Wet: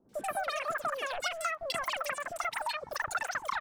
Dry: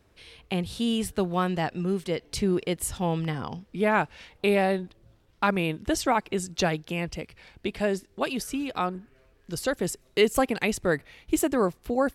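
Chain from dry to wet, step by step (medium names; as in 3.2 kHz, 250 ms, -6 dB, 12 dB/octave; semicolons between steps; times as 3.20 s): wide varispeed 3.37×; overdrive pedal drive 13 dB, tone 2.7 kHz, clips at -8.5 dBFS; three bands offset in time lows, highs, mids 90/130 ms, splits 630/2800 Hz; compression, threshold -26 dBFS, peak gain reduction 10 dB; trim -4 dB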